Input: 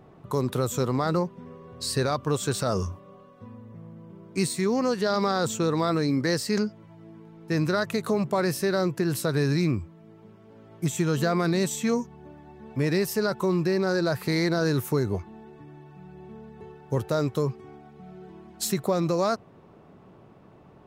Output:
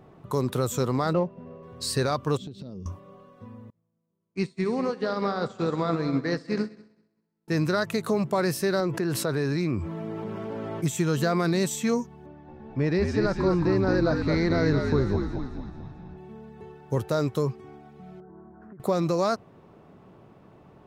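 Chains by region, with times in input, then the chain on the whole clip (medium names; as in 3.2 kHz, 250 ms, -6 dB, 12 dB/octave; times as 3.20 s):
1.13–1.63 s: median filter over 15 samples + tape spacing loss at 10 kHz 21 dB + small resonant body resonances 620/2700 Hz, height 17 dB, ringing for 60 ms
2.37–2.86 s: FFT filter 110 Hz 0 dB, 180 Hz +6 dB, 260 Hz +6 dB, 540 Hz -6 dB, 770 Hz -16 dB, 1.5 kHz -23 dB, 3.5 kHz -5 dB, 8.7 kHz -28 dB + compression 10:1, threshold -35 dBFS
3.70–7.48 s: low-pass 3.7 kHz + multi-head delay 65 ms, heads first and third, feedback 62%, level -12.5 dB + upward expansion 2.5:1, over -44 dBFS
8.80–10.84 s: high-pass 730 Hz 6 dB/octave + tilt EQ -3 dB/octave + level flattener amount 70%
12.26–16.18 s: low-pass 6.4 kHz 24 dB/octave + treble shelf 3.2 kHz -9.5 dB + frequency-shifting echo 219 ms, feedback 52%, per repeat -62 Hz, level -4 dB
18.20–18.80 s: elliptic low-pass 1.5 kHz, stop band 60 dB + compression 10:1, threshold -43 dBFS
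whole clip: none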